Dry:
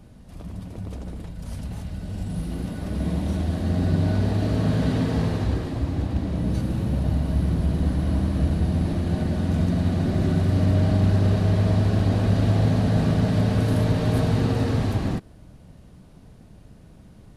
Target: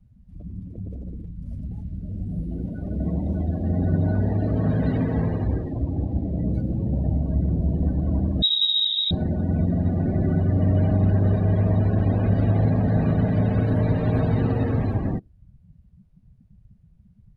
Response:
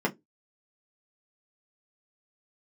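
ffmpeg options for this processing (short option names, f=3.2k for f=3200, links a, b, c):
-filter_complex "[0:a]equalizer=f=2.2k:t=o:w=0.82:g=4,asettb=1/sr,asplit=3[a][b][c];[a]atrim=end=8.424[d];[b]atrim=start=8.42:end=9.11,asetpts=PTS-STARTPTS,afade=t=in:d=0.004:c=qsin,afade=t=out:st=0.686:d=0.004:c=qsin,lowpass=f=3.3k:t=q:w=0.5098,lowpass=f=3.3k:t=q:w=0.6013,lowpass=f=3.3k:t=q:w=0.9,lowpass=f=3.3k:t=q:w=2.563,afreqshift=-3900[e];[c]atrim=start=9.106[f];[d][e]acrossfade=d=0.004:c1=hsin:c2=qsin[g];[g][f]acrossfade=d=0.004:c1=qsin:c2=hsin,afftdn=nr=26:nf=-33"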